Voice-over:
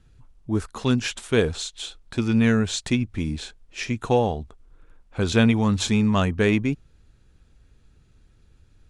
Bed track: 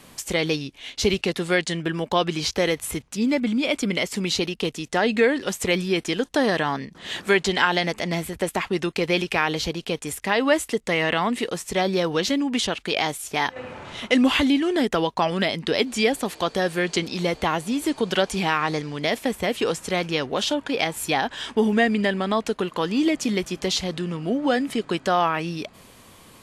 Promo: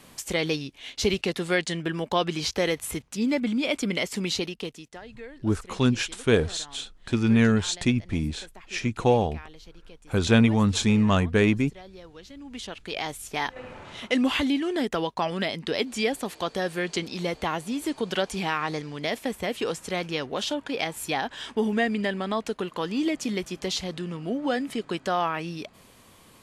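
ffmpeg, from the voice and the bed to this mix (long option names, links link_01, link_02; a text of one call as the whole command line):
ffmpeg -i stem1.wav -i stem2.wav -filter_complex "[0:a]adelay=4950,volume=-0.5dB[link_01];[1:a]volume=15.5dB,afade=type=out:start_time=4.26:duration=0.75:silence=0.0944061,afade=type=in:start_time=12.33:duration=0.98:silence=0.11885[link_02];[link_01][link_02]amix=inputs=2:normalize=0" out.wav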